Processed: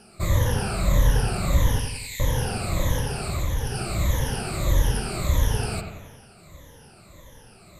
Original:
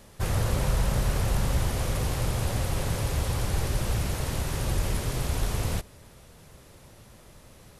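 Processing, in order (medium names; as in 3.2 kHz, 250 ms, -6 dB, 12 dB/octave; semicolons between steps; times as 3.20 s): drifting ripple filter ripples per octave 1.1, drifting -1.6 Hz, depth 21 dB; 1.79–2.20 s: steep high-pass 1.8 kHz 96 dB/octave; 2.96–3.75 s: compression 2:1, threshold -24 dBFS, peak gain reduction 6 dB; bucket-brigade echo 90 ms, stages 2048, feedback 53%, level -6 dB; trim -2 dB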